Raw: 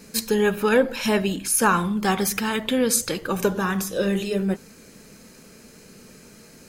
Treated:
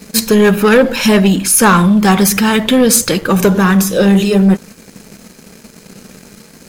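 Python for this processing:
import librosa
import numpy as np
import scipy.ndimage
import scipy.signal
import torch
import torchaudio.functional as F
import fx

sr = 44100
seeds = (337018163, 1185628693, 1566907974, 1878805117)

y = fx.peak_eq(x, sr, hz=190.0, db=5.0, octaves=0.5)
y = fx.leveller(y, sr, passes=2)
y = y * 10.0 ** (5.0 / 20.0)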